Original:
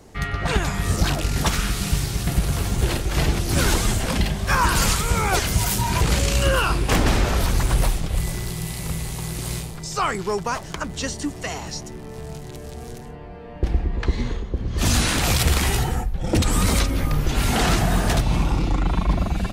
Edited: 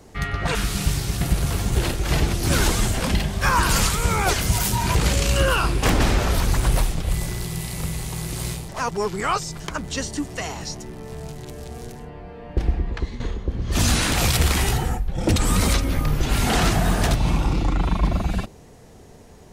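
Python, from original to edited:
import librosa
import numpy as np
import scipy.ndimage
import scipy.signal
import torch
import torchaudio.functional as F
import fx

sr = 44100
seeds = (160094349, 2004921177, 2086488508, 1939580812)

y = fx.edit(x, sr, fx.cut(start_s=0.55, length_s=1.06),
    fx.reverse_span(start_s=9.75, length_s=0.91),
    fx.fade_out_to(start_s=13.86, length_s=0.4, floor_db=-12.0), tone=tone)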